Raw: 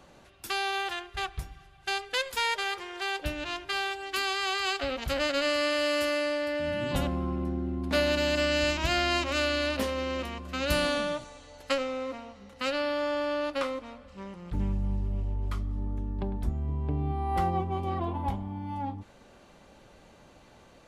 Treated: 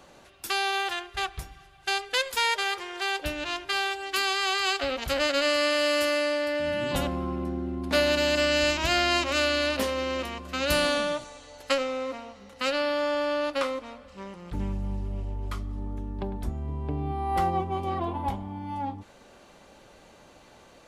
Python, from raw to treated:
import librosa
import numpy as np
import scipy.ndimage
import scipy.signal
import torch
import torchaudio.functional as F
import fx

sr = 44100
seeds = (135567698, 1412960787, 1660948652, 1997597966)

y = fx.bass_treble(x, sr, bass_db=-5, treble_db=2)
y = y * librosa.db_to_amplitude(3.0)